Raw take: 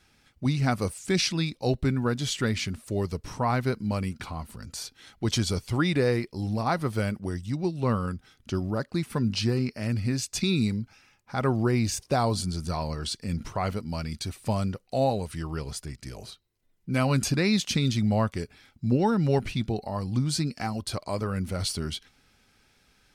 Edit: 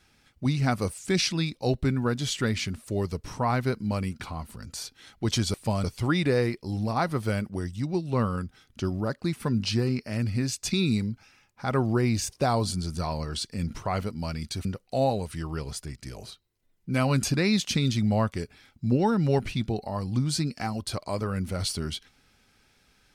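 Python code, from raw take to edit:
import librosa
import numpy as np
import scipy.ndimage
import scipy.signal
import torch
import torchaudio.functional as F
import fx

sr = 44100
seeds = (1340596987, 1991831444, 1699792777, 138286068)

y = fx.edit(x, sr, fx.move(start_s=14.35, length_s=0.3, to_s=5.54), tone=tone)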